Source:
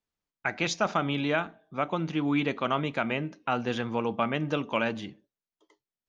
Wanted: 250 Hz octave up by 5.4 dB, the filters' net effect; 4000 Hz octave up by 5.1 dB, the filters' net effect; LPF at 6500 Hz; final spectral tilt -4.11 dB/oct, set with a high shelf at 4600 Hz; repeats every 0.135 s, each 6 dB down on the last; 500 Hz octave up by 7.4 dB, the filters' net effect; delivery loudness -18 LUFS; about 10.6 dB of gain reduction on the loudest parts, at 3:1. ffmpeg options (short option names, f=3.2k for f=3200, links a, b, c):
-af "lowpass=6.5k,equalizer=f=250:t=o:g=4,equalizer=f=500:t=o:g=8,equalizer=f=4k:t=o:g=8.5,highshelf=f=4.6k:g=-3,acompressor=threshold=-32dB:ratio=3,aecho=1:1:135|270|405|540|675|810:0.501|0.251|0.125|0.0626|0.0313|0.0157,volume=14.5dB"